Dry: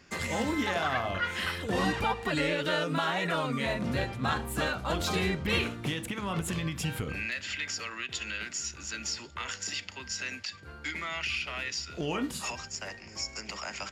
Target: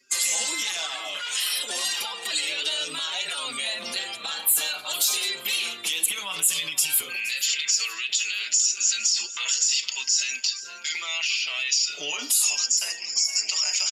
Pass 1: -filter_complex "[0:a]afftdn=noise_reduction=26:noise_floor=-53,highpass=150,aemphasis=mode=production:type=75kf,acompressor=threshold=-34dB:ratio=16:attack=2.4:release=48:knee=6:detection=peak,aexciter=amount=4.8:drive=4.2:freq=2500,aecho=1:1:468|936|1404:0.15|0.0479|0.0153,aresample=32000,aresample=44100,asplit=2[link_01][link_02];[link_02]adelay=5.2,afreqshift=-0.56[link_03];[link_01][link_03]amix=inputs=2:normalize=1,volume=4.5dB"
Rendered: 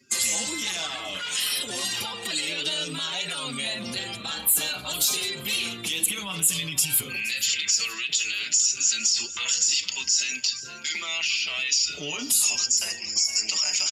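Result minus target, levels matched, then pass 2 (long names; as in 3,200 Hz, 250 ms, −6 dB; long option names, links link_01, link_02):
125 Hz band +17.0 dB
-filter_complex "[0:a]afftdn=noise_reduction=26:noise_floor=-53,highpass=560,aemphasis=mode=production:type=75kf,acompressor=threshold=-34dB:ratio=16:attack=2.4:release=48:knee=6:detection=peak,aexciter=amount=4.8:drive=4.2:freq=2500,aecho=1:1:468|936|1404:0.15|0.0479|0.0153,aresample=32000,aresample=44100,asplit=2[link_01][link_02];[link_02]adelay=5.2,afreqshift=-0.56[link_03];[link_01][link_03]amix=inputs=2:normalize=1,volume=4.5dB"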